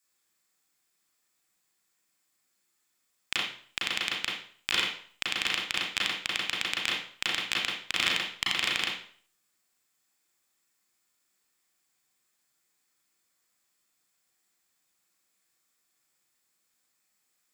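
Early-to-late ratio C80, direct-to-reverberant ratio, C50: 6.5 dB, -4.5 dB, 2.5 dB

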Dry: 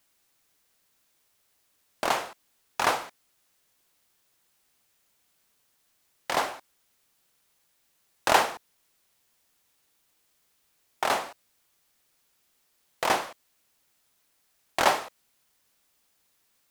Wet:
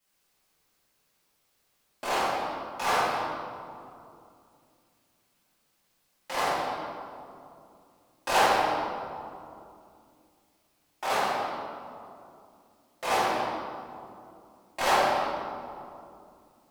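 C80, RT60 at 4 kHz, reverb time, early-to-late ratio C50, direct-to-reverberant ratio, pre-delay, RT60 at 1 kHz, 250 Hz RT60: -1.0 dB, 1.3 s, 2.6 s, -4.0 dB, -15.0 dB, 3 ms, 2.4 s, 3.4 s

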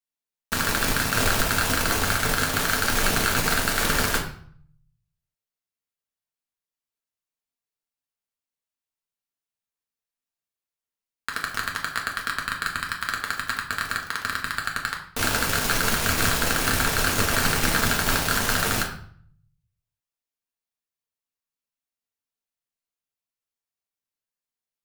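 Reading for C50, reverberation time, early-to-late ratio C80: 7.5 dB, 0.55 s, 11.0 dB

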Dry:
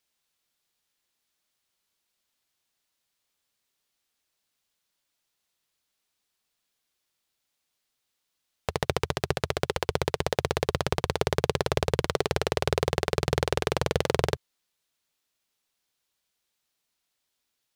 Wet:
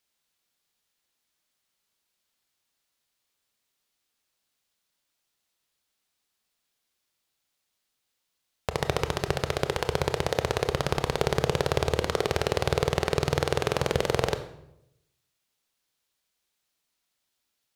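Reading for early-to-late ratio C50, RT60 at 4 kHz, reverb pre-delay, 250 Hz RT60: 11.5 dB, 0.60 s, 23 ms, 0.95 s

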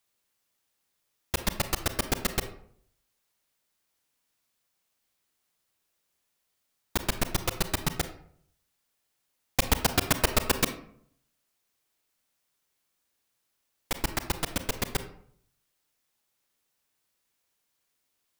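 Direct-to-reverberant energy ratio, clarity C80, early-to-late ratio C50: 9.0 dB, 14.5 dB, 11.0 dB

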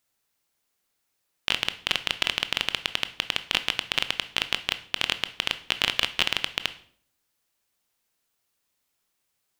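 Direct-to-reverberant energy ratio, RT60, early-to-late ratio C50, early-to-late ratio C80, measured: 11.0 dB, 0.55 s, 15.0 dB, 19.0 dB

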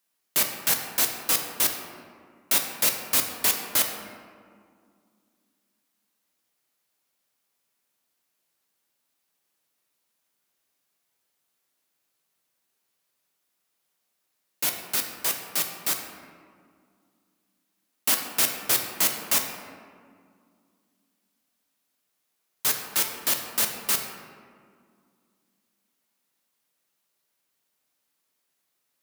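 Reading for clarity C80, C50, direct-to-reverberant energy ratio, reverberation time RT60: 6.5 dB, 5.0 dB, 3.0 dB, 2.1 s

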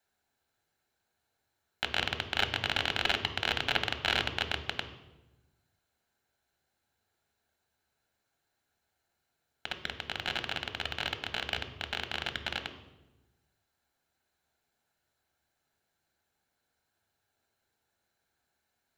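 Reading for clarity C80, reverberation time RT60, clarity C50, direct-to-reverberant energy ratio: 12.0 dB, 1.1 s, 10.0 dB, 6.5 dB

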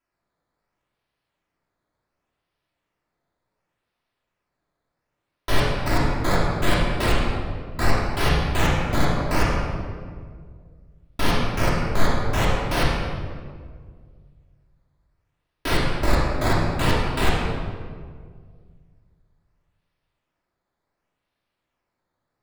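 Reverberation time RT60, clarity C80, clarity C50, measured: 1.9 s, 1.5 dB, -0.5 dB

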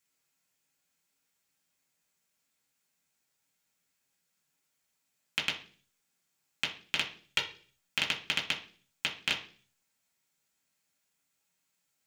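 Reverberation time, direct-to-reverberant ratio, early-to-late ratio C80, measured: 0.45 s, -2.5 dB, 15.5 dB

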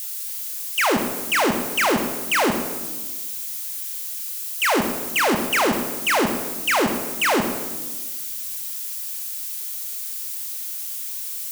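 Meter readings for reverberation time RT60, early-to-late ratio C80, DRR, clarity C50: 1.3 s, 8.0 dB, 4.5 dB, 6.5 dB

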